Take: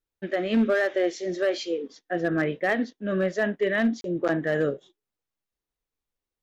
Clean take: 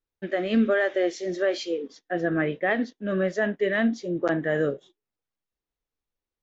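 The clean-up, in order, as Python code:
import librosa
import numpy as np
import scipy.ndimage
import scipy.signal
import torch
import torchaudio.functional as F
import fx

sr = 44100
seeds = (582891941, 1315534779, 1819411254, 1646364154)

y = fx.fix_declip(x, sr, threshold_db=-16.0)
y = fx.fix_interpolate(y, sr, at_s=(4.01,), length_ms=32.0)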